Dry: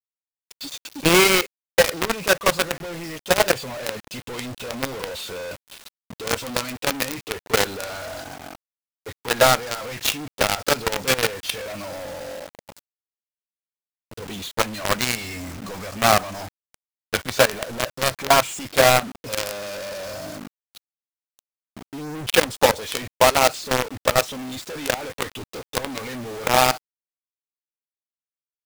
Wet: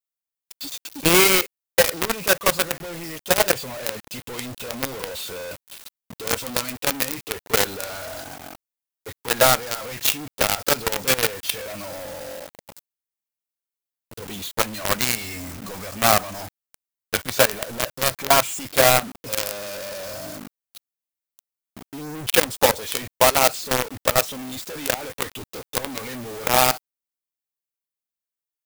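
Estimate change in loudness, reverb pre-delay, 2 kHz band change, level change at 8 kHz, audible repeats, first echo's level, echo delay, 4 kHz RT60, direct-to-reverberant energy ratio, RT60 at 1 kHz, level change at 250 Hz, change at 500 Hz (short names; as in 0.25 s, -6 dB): +0.5 dB, none, -1.0 dB, +2.5 dB, none, none, none, none, none, none, -1.5 dB, -1.5 dB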